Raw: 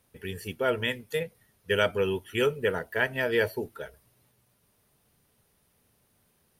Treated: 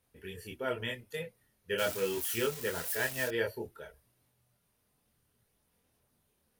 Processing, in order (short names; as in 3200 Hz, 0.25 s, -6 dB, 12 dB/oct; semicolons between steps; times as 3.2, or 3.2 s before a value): 1.78–3.28 switching spikes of -20.5 dBFS; chorus voices 4, 0.63 Hz, delay 25 ms, depth 2.1 ms; gain -4 dB